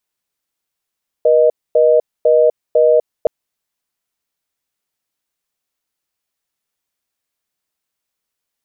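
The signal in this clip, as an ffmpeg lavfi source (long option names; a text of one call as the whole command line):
ffmpeg -f lavfi -i "aevalsrc='0.299*(sin(2*PI*480*t)+sin(2*PI*620*t))*clip(min(mod(t,0.5),0.25-mod(t,0.5))/0.005,0,1)':duration=2.02:sample_rate=44100" out.wav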